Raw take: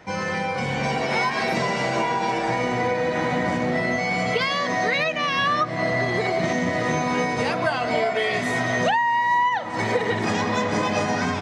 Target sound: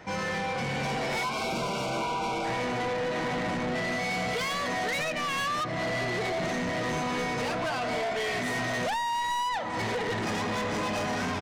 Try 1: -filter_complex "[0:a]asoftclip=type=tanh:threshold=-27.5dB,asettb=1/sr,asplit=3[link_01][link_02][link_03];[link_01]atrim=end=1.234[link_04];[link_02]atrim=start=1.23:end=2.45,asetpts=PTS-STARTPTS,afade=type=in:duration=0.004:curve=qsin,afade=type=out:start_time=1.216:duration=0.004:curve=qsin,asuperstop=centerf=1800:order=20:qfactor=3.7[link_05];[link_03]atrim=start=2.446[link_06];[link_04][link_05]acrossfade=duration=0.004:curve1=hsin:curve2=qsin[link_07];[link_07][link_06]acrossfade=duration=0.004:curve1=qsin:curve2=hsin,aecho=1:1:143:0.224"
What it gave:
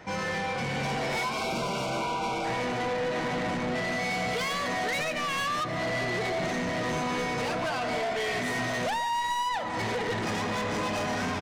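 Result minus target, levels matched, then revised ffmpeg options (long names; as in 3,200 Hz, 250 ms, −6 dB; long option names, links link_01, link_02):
echo-to-direct +11 dB
-filter_complex "[0:a]asoftclip=type=tanh:threshold=-27.5dB,asettb=1/sr,asplit=3[link_01][link_02][link_03];[link_01]atrim=end=1.234[link_04];[link_02]atrim=start=1.23:end=2.45,asetpts=PTS-STARTPTS,afade=type=in:duration=0.004:curve=qsin,afade=type=out:start_time=1.216:duration=0.004:curve=qsin,asuperstop=centerf=1800:order=20:qfactor=3.7[link_05];[link_03]atrim=start=2.446[link_06];[link_04][link_05]acrossfade=duration=0.004:curve1=hsin:curve2=qsin[link_07];[link_07][link_06]acrossfade=duration=0.004:curve1=qsin:curve2=hsin,aecho=1:1:143:0.0631"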